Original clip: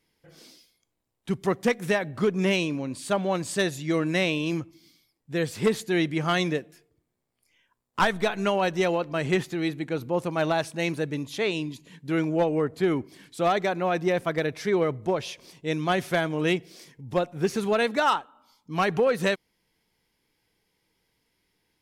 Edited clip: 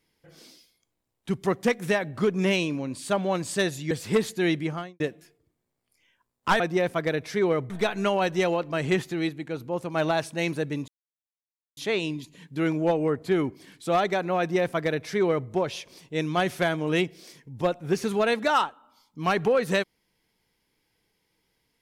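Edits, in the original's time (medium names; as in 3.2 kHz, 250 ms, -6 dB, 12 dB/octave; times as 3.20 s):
3.91–5.42 s: delete
6.05–6.51 s: studio fade out
9.70–10.35 s: gain -3.5 dB
11.29 s: insert silence 0.89 s
13.91–15.01 s: copy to 8.11 s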